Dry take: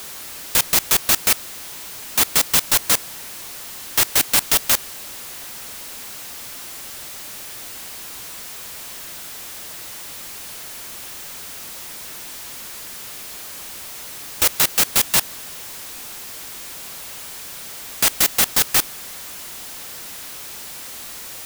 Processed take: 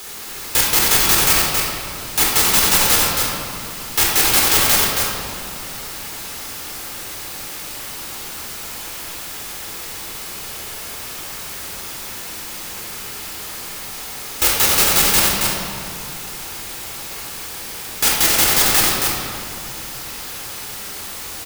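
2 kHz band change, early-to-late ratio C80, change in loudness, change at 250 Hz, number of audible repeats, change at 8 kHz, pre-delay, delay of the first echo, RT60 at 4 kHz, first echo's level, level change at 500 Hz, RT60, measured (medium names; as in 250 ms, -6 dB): +5.5 dB, -1.0 dB, +4.0 dB, +7.0 dB, 1, +3.5 dB, 25 ms, 272 ms, 1.4 s, -3.5 dB, +6.5 dB, 2.4 s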